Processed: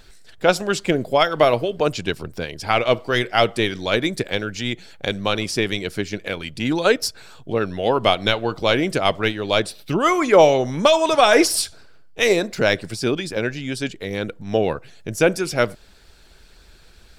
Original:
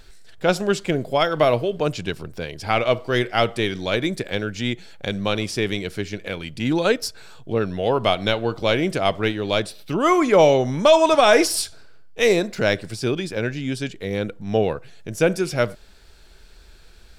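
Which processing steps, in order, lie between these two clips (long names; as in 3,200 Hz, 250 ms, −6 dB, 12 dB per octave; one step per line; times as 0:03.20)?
harmonic and percussive parts rebalanced percussive +7 dB
level −3 dB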